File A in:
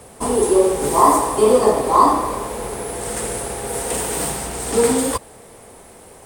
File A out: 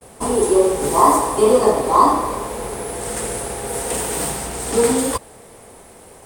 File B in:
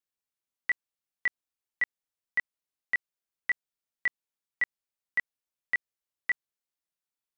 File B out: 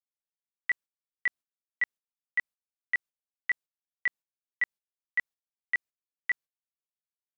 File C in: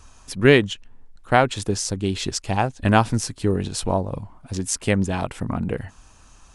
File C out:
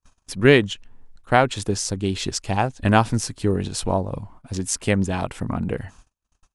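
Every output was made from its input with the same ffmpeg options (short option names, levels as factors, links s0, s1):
-af "agate=range=0.00794:threshold=0.00631:ratio=16:detection=peak"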